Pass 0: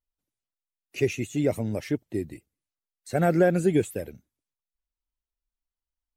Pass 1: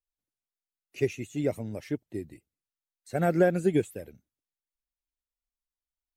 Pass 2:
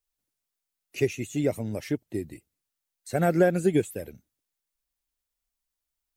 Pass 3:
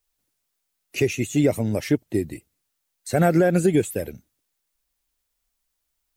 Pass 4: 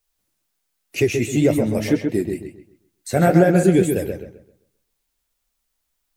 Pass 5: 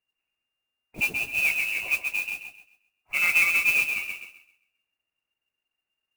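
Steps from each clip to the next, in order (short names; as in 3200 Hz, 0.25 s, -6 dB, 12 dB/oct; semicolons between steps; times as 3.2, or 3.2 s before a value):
upward expander 1.5:1, over -29 dBFS; gain -1 dB
high shelf 5500 Hz +5 dB; in parallel at -1 dB: compressor, threshold -33 dBFS, peak gain reduction 15.5 dB
limiter -17 dBFS, peak gain reduction 8 dB; gain +8 dB
flange 2 Hz, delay 8.5 ms, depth 8.5 ms, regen -46%; on a send: darkening echo 0.132 s, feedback 31%, low-pass 3200 Hz, level -5 dB; on the sum: gain +6 dB
dynamic EQ 2200 Hz, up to -4 dB, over -39 dBFS, Q 0.85; inverted band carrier 2800 Hz; modulation noise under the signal 13 dB; gain -8 dB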